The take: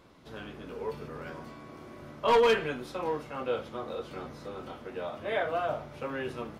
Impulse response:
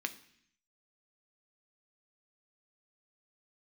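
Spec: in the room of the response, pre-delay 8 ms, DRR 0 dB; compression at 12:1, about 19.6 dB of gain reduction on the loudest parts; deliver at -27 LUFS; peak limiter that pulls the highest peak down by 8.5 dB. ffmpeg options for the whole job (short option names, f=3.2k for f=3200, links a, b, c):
-filter_complex "[0:a]acompressor=threshold=-40dB:ratio=12,alimiter=level_in=13dB:limit=-24dB:level=0:latency=1,volume=-13dB,asplit=2[a][b];[1:a]atrim=start_sample=2205,adelay=8[c];[b][c]afir=irnorm=-1:irlink=0,volume=-2dB[d];[a][d]amix=inputs=2:normalize=0,volume=17.5dB"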